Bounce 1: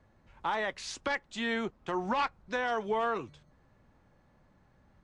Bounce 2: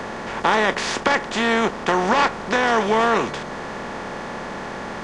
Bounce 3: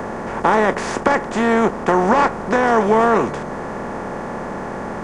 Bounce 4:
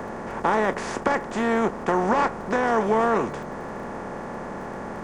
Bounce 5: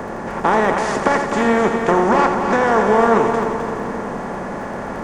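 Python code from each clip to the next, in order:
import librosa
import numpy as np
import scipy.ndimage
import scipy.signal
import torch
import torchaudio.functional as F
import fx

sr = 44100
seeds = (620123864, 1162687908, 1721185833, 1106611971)

y1 = fx.bin_compress(x, sr, power=0.4)
y1 = y1 * librosa.db_to_amplitude(8.5)
y2 = fx.peak_eq(y1, sr, hz=3700.0, db=-15.0, octaves=1.8)
y2 = y2 * librosa.db_to_amplitude(5.5)
y3 = fx.dmg_crackle(y2, sr, seeds[0], per_s=28.0, level_db=-34.0)
y3 = y3 * librosa.db_to_amplitude(-6.5)
y4 = fx.echo_heads(y3, sr, ms=86, heads='first and third', feedback_pct=63, wet_db=-8)
y4 = y4 * librosa.db_to_amplitude(5.5)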